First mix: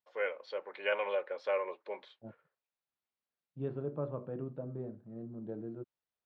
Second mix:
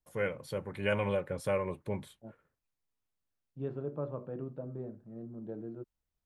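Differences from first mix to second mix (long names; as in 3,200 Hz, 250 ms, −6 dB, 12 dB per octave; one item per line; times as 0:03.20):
first voice: remove high-pass filter 450 Hz 24 dB per octave
master: remove Butterworth low-pass 4,800 Hz 36 dB per octave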